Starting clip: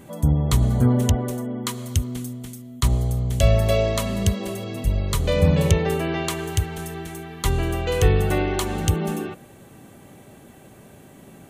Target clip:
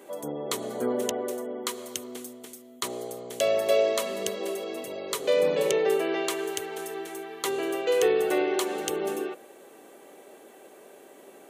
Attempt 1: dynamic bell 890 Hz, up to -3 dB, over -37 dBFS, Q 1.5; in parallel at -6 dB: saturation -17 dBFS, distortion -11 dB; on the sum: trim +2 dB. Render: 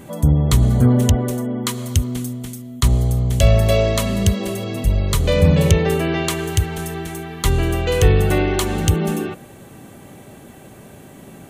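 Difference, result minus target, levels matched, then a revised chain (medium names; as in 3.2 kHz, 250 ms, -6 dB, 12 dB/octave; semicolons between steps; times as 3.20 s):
250 Hz band +4.0 dB
dynamic bell 890 Hz, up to -3 dB, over -37 dBFS, Q 1.5; ladder high-pass 340 Hz, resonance 40%; in parallel at -6 dB: saturation -17 dBFS, distortion -27 dB; on the sum: trim +2 dB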